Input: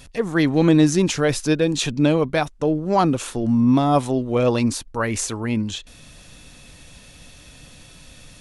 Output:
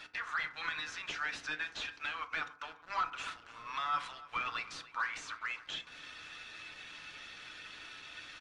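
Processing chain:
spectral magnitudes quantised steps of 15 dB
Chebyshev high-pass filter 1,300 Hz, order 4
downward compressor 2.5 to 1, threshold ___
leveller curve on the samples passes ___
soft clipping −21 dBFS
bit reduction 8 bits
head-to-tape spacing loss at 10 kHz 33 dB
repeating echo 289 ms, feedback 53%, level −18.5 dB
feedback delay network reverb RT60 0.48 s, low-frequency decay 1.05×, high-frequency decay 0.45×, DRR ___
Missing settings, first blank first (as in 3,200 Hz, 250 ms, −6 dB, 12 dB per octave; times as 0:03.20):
−39 dBFS, 3, 7 dB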